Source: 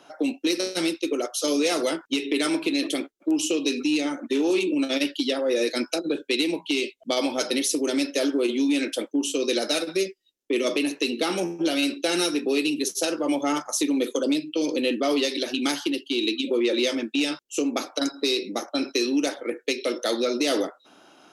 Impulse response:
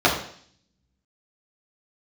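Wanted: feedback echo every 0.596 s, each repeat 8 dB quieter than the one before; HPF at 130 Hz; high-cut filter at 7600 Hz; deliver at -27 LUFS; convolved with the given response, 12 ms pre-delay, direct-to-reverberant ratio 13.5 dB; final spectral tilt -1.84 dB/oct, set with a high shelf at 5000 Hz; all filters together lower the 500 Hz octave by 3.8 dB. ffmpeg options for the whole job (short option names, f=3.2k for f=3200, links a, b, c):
-filter_complex "[0:a]highpass=130,lowpass=7.6k,equalizer=f=500:t=o:g=-5,highshelf=f=5k:g=3,aecho=1:1:596|1192|1788|2384|2980:0.398|0.159|0.0637|0.0255|0.0102,asplit=2[a][b];[1:a]atrim=start_sample=2205,adelay=12[c];[b][c]afir=irnorm=-1:irlink=0,volume=-34.5dB[d];[a][d]amix=inputs=2:normalize=0,volume=-1.5dB"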